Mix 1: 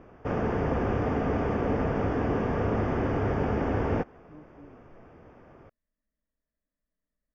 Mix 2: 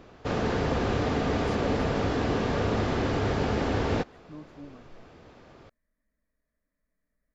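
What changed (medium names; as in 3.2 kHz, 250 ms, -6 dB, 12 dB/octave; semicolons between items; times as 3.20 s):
speech +6.5 dB; master: remove boxcar filter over 11 samples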